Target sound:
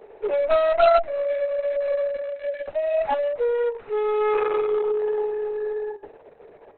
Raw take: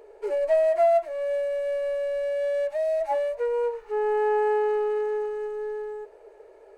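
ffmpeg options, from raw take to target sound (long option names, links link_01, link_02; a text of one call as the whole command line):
ffmpeg -i in.wav -af "aeval=exprs='0.2*(cos(1*acos(clip(val(0)/0.2,-1,1)))-cos(1*PI/2))+0.0631*(cos(4*acos(clip(val(0)/0.2,-1,1)))-cos(4*PI/2))+0.0112*(cos(5*acos(clip(val(0)/0.2,-1,1)))-cos(5*PI/2))+0.0398*(cos(6*acos(clip(val(0)/0.2,-1,1)))-cos(6*PI/2))':channel_layout=same,volume=2.5dB" -ar 48000 -c:a libopus -b:a 6k out.opus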